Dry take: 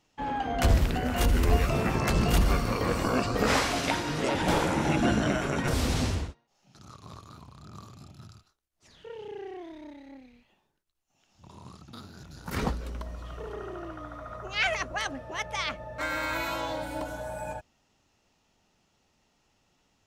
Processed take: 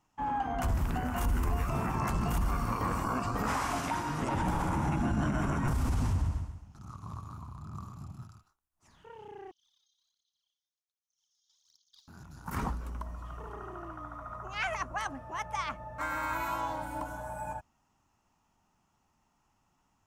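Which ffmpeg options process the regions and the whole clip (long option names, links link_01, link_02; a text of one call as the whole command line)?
ffmpeg -i in.wav -filter_complex "[0:a]asettb=1/sr,asplit=3[link_01][link_02][link_03];[link_01]atrim=end=4.214[link_04];[link_02]atrim=start=4.21:end=8.23,asetpts=PTS-STARTPTS,afade=type=in:duration=0.004:curve=qsin,afade=type=out:start_time=4.016:duration=0.004:curve=qsin,lowshelf=frequency=180:gain=10.5,aecho=1:1:134|268|402|536:0.376|0.143|0.0543|0.0206,atrim=end_sample=177282[link_05];[link_03]atrim=start=8.226[link_06];[link_04][link_05]acrossfade=duration=0.004:curve1=hsin:curve2=qsin[link_07];[link_07][link_06]acrossfade=duration=0.004:curve1=qsin:curve2=hsin,asettb=1/sr,asplit=3[link_08][link_09][link_10];[link_08]atrim=end=9.514[link_11];[link_09]atrim=start=9.51:end=12.08,asetpts=PTS-STARTPTS,afade=type=in:duration=0.004:curve=qsin,afade=type=out:start_time=2.566:duration=0.004:curve=qsin,asuperpass=centerf=4600:order=20:qfactor=1.3,aphaser=in_gain=1:out_gain=1:delay=2.5:decay=0.7:speed=1.3:type=sinusoidal[link_12];[link_10]atrim=start=12.076[link_13];[link_11][link_12]acrossfade=duration=0.004:curve1=hsin:curve2=qsin[link_14];[link_14][link_13]acrossfade=duration=0.004:curve1=qsin:curve2=hsin,equalizer=frequency=500:width_type=o:width=1:gain=-10,equalizer=frequency=1000:width_type=o:width=1:gain=8,equalizer=frequency=2000:width_type=o:width=1:gain=-4,equalizer=frequency=4000:width_type=o:width=1:gain=-11,alimiter=limit=-20dB:level=0:latency=1:release=59,volume=-2dB" out.wav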